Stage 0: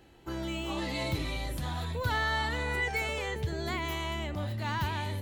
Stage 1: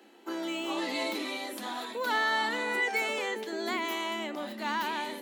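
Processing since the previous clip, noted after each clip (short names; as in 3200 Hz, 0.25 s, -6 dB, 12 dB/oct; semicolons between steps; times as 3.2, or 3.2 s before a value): Chebyshev high-pass 210 Hz, order 8; gain +3 dB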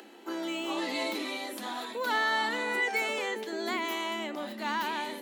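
upward compressor, threshold -45 dBFS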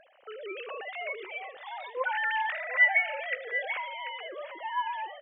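sine-wave speech; on a send: tapped delay 76/738 ms -19.5/-10.5 dB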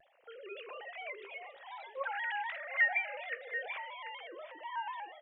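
on a send at -14 dB: reverb, pre-delay 5 ms; on the sum: shaped vibrato square 4.1 Hz, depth 100 cents; gain -7.5 dB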